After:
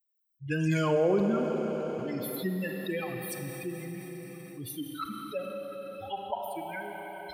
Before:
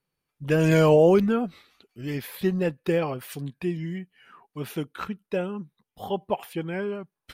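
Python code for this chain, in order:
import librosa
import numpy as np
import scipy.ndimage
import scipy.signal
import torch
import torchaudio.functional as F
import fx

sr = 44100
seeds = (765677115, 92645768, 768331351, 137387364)

y = fx.bin_expand(x, sr, power=3.0)
y = scipy.signal.sosfilt(scipy.signal.butter(2, 57.0, 'highpass', fs=sr, output='sos'), y)
y = fx.rev_schroeder(y, sr, rt60_s=3.5, comb_ms=32, drr_db=5.0)
y = fx.env_flatten(y, sr, amount_pct=50)
y = y * 10.0 ** (-6.0 / 20.0)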